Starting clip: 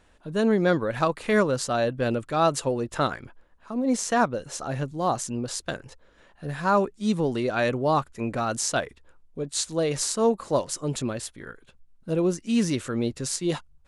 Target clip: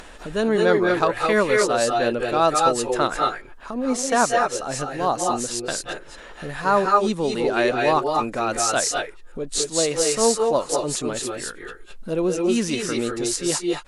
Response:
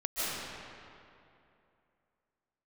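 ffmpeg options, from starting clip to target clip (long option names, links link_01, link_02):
-filter_complex "[0:a]equalizer=frequency=100:width=0.69:gain=-11,acompressor=mode=upward:threshold=-32dB:ratio=2.5[link_01];[1:a]atrim=start_sample=2205,atrim=end_sample=6615,asetrate=29106,aresample=44100[link_02];[link_01][link_02]afir=irnorm=-1:irlink=0,volume=3.5dB"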